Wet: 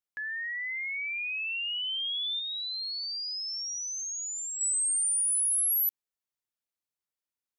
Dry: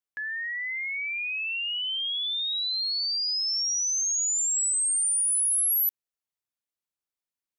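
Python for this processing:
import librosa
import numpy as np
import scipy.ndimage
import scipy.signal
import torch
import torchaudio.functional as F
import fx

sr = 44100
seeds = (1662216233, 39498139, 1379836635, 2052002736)

y = fx.lowpass(x, sr, hz=3300.0, slope=6, at=(2.39, 4.61))
y = y * 10.0 ** (-2.5 / 20.0)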